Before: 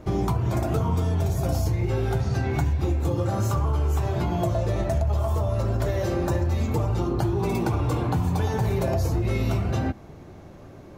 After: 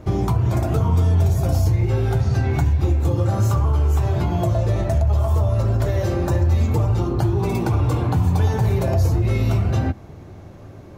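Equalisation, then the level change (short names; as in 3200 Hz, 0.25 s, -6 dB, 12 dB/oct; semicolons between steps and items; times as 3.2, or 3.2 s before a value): bell 93 Hz +6.5 dB 0.81 oct; +2.0 dB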